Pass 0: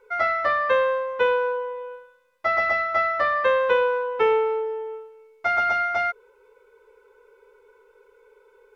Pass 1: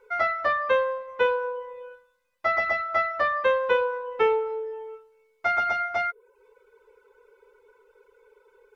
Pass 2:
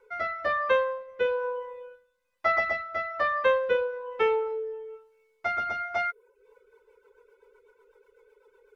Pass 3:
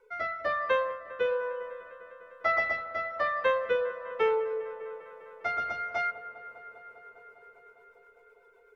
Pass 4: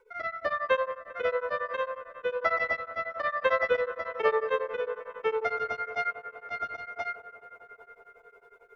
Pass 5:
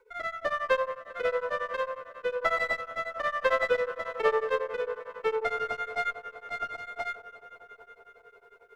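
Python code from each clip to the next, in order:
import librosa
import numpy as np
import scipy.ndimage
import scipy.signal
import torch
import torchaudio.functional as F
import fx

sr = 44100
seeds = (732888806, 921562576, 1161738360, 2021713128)

y1 = fx.dereverb_blind(x, sr, rt60_s=0.62)
y1 = F.gain(torch.from_numpy(y1), -1.0).numpy()
y2 = fx.rotary_switch(y1, sr, hz=1.1, then_hz=8.0, switch_at_s=6.14)
y3 = fx.echo_wet_lowpass(y2, sr, ms=201, feedback_pct=81, hz=2000.0, wet_db=-15)
y3 = fx.room_shoebox(y3, sr, seeds[0], volume_m3=2700.0, walls='furnished', distance_m=0.48)
y3 = F.gain(torch.from_numpy(y3), -2.5).numpy()
y4 = y3 + 10.0 ** (-3.5 / 20.0) * np.pad(y3, (int(1044 * sr / 1000.0), 0))[:len(y3)]
y4 = y4 * np.abs(np.cos(np.pi * 11.0 * np.arange(len(y4)) / sr))
y4 = F.gain(torch.from_numpy(y4), 2.5).numpy()
y5 = fx.running_max(y4, sr, window=3)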